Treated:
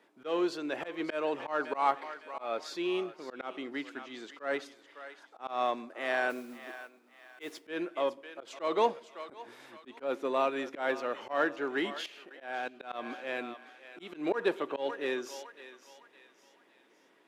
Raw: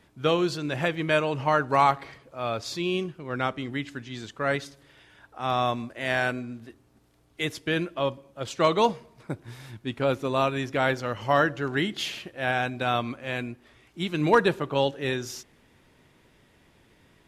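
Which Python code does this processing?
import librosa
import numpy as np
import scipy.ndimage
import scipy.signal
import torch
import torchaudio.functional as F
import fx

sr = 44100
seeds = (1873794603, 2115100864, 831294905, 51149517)

p1 = np.clip(x, -10.0 ** (-24.5 / 20.0), 10.0 ** (-24.5 / 20.0))
p2 = x + (p1 * librosa.db_to_amplitude(-6.0))
p3 = fx.echo_thinned(p2, sr, ms=559, feedback_pct=42, hz=830.0, wet_db=-13)
p4 = fx.mod_noise(p3, sr, seeds[0], snr_db=16, at=(6.29, 7.67), fade=0.02)
p5 = fx.level_steps(p4, sr, step_db=14, at=(11.98, 12.9), fade=0.02)
p6 = scipy.signal.sosfilt(scipy.signal.butter(4, 290.0, 'highpass', fs=sr, output='sos'), p5)
p7 = fx.high_shelf(p6, sr, hz=3100.0, db=-9.5)
p8 = fx.auto_swell(p7, sr, attack_ms=147.0)
y = p8 * librosa.db_to_amplitude(-5.5)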